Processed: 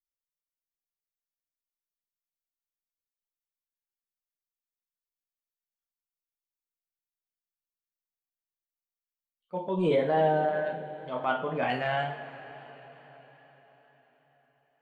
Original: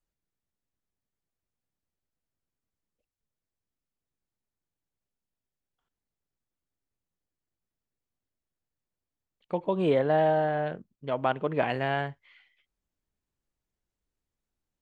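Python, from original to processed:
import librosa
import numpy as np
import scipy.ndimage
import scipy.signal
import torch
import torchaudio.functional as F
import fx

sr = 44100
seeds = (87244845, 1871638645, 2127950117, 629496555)

y = fx.bin_expand(x, sr, power=1.5)
y = fx.low_shelf(y, sr, hz=110.0, db=-11.0)
y = fx.rev_double_slope(y, sr, seeds[0], early_s=0.41, late_s=5.0, knee_db=-19, drr_db=1.0)
y = fx.transient(y, sr, attack_db=-7, sustain_db=0)
y = fx.wow_flutter(y, sr, seeds[1], rate_hz=2.1, depth_cents=26.0)
y = F.gain(torch.from_numpy(y), 1.5).numpy()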